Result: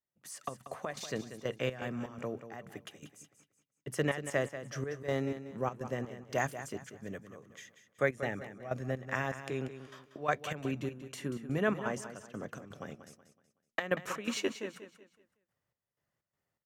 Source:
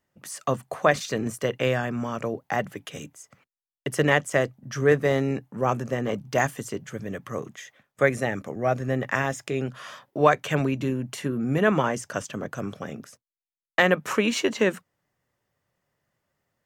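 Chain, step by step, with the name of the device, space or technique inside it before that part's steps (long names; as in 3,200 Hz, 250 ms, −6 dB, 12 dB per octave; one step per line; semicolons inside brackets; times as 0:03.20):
trance gate with a delay (gate pattern "..xx.xx.xx" 124 BPM −12 dB; repeating echo 187 ms, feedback 35%, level −11.5 dB)
level −9 dB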